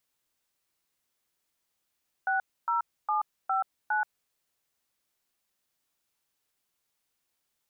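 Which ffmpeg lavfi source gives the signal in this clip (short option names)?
-f lavfi -i "aevalsrc='0.0447*clip(min(mod(t,0.408),0.13-mod(t,0.408))/0.002,0,1)*(eq(floor(t/0.408),0)*(sin(2*PI*770*mod(t,0.408))+sin(2*PI*1477*mod(t,0.408)))+eq(floor(t/0.408),1)*(sin(2*PI*941*mod(t,0.408))+sin(2*PI*1336*mod(t,0.408)))+eq(floor(t/0.408),2)*(sin(2*PI*852*mod(t,0.408))+sin(2*PI*1209*mod(t,0.408)))+eq(floor(t/0.408),3)*(sin(2*PI*770*mod(t,0.408))+sin(2*PI*1336*mod(t,0.408)))+eq(floor(t/0.408),4)*(sin(2*PI*852*mod(t,0.408))+sin(2*PI*1477*mod(t,0.408))))':d=2.04:s=44100"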